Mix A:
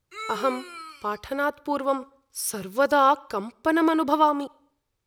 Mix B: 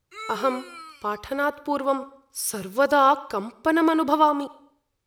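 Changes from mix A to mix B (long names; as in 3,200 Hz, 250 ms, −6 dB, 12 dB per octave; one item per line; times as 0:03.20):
speech: send +9.0 dB
background: send −10.0 dB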